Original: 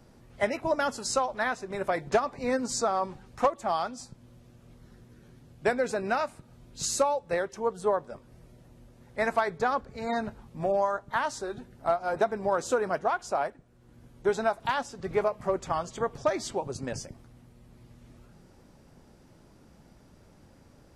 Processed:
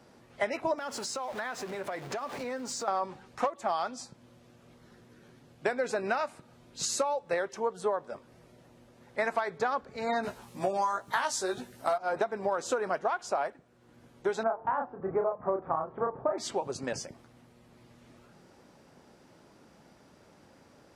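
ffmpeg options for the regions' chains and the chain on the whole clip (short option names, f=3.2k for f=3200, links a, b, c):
-filter_complex "[0:a]asettb=1/sr,asplit=3[a][b][c];[a]atrim=end=0.784[d];[b]atrim=start=0.78:end=2.88,asetpts=PTS-STARTPTS,afade=t=in:d=0.004:c=qsin,afade=t=out:st=2.096:d=0.004:c=qsin,aeval=exprs='val(0)+0.5*0.0112*sgn(val(0))':c=same,acompressor=threshold=-34dB:ratio=8:attack=3.2:release=140:knee=1:detection=peak[e];[c]atrim=start=2.876[f];[d][e]acrossfade=d=0.004:c1=hsin:c2=qsin[g];[g][f]acrossfade=d=0.004:c1=qsin:c2=hsin,asettb=1/sr,asplit=3[h][i][j];[h]atrim=end=10.234[k];[i]atrim=start=10.23:end=11.98,asetpts=PTS-STARTPTS,afade=t=in:d=0.004:c=qsin,afade=t=out:st=1.746:d=0.004:c=qsin,aemphasis=mode=production:type=75kf,asplit=2[l][m];[m]adelay=16,volume=-3dB[n];[l][n]amix=inputs=2:normalize=0,atrim=end_sample=77175[o];[j]atrim=start=11.976[p];[k][o]acrossfade=d=0.004:c1=hsin:c2=qsin[q];[q][p]acrossfade=d=0.004:c1=qsin:c2=hsin,asettb=1/sr,asplit=3[r][s][t];[r]atrim=end=14.434[u];[s]atrim=start=14.43:end=16.38,asetpts=PTS-STARTPTS,afade=t=in:d=0.004:c=qsin,afade=t=out:st=1.946:d=0.004:c=qsin,lowpass=f=1.3k:w=0.5412,lowpass=f=1.3k:w=1.3066,asplit=2[v][w];[w]adelay=31,volume=-3.5dB[x];[v][x]amix=inputs=2:normalize=0,atrim=end_sample=85995,bandreject=f=149.4:t=h:w=4,bandreject=f=298.8:t=h:w=4,bandreject=f=448.2:t=h:w=4,bandreject=f=597.6:t=h:w=4,bandreject=f=747:t=h:w=4,bandreject=f=896.4:t=h:w=4,bandreject=f=1.0458k:t=h:w=4[y];[t]atrim=start=16.376[z];[u][y]acrossfade=d=0.004:c1=hsin:c2=qsin[aa];[aa][z]acrossfade=d=0.004:c1=qsin:c2=hsin,highpass=f=370:p=1,acompressor=threshold=-29dB:ratio=6,highshelf=f=8.5k:g=-8.5,volume=3.5dB"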